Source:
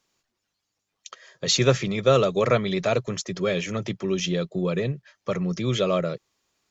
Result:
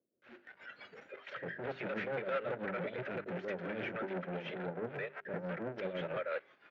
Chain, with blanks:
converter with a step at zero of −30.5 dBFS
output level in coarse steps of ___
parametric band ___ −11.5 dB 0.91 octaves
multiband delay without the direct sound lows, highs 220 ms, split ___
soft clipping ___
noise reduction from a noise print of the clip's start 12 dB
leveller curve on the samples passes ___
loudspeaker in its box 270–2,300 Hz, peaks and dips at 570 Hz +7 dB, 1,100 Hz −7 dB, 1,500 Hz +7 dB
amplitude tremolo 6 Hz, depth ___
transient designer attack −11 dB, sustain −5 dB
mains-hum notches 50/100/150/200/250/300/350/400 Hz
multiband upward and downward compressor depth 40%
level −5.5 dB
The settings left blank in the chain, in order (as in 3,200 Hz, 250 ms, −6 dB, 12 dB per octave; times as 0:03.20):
17 dB, 800 Hz, 560 Hz, −22.5 dBFS, 5, 60%